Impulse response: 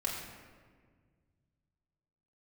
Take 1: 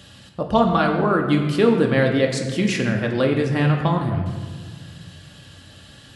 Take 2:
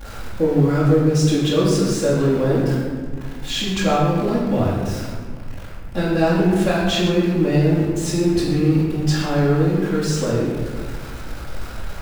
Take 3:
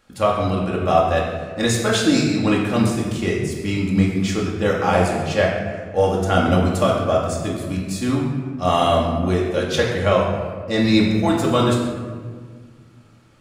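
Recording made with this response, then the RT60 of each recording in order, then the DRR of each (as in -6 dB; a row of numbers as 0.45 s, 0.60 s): 3; 1.7 s, 1.7 s, 1.7 s; 1.5 dB, -10.5 dB, -4.0 dB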